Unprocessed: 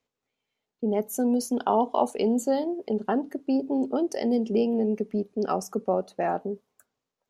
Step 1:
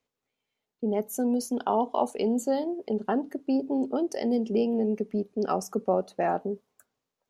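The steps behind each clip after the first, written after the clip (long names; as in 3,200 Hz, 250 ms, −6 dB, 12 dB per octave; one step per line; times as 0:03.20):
speech leveller 2 s
level −1.5 dB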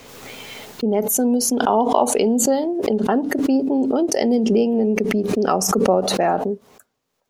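background raised ahead of every attack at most 31 dB per second
level +7.5 dB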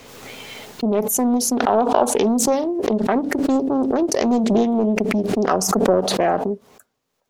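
highs frequency-modulated by the lows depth 0.44 ms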